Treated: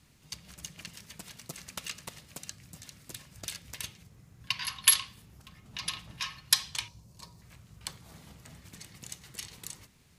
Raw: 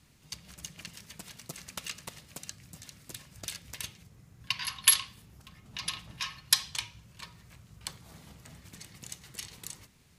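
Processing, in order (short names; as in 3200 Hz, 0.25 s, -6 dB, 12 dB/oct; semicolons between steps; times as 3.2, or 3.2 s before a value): 6.88–7.42 band shelf 2100 Hz -12.5 dB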